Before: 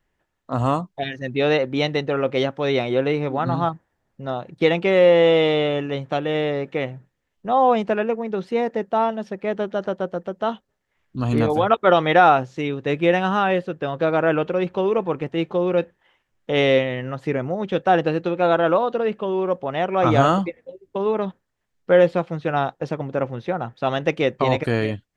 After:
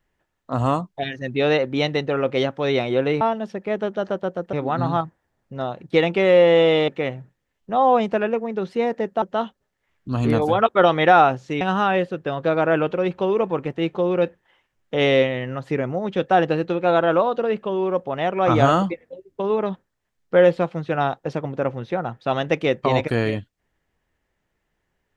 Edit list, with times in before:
5.56–6.64 s: delete
8.98–10.30 s: move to 3.21 s
12.69–13.17 s: delete

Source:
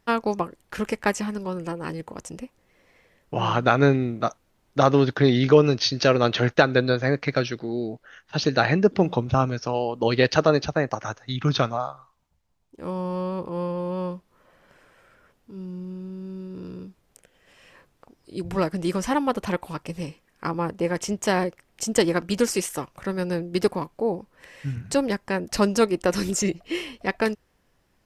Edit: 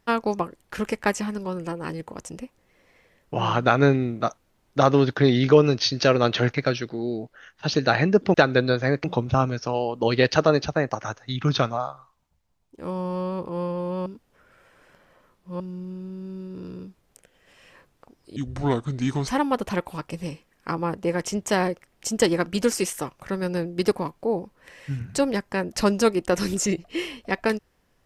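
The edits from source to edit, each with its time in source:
6.54–7.24 s: move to 9.04 s
14.06–15.60 s: reverse
18.36–19.04 s: speed 74%

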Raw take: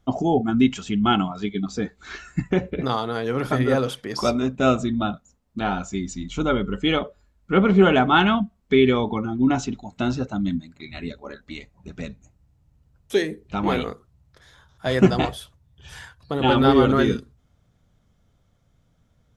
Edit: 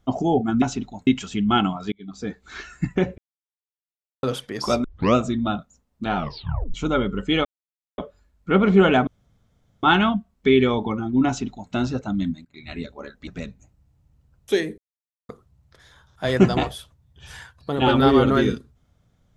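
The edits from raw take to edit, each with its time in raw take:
1.47–1.99 s: fade in
2.73–3.78 s: mute
4.39 s: tape start 0.31 s
5.71 s: tape stop 0.58 s
7.00 s: insert silence 0.53 s
8.09 s: insert room tone 0.76 s
9.53–9.98 s: copy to 0.62 s
10.71–10.96 s: fade in, from -20.5 dB
11.53–11.89 s: delete
13.40–13.91 s: mute

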